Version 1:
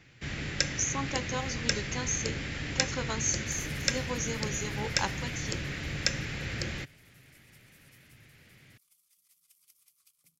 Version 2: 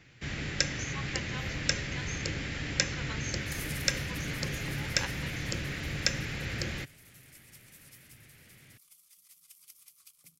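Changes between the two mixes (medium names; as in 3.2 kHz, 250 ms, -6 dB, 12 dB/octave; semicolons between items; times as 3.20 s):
speech: add band-pass filter 2.2 kHz, Q 1.6; second sound +8.5 dB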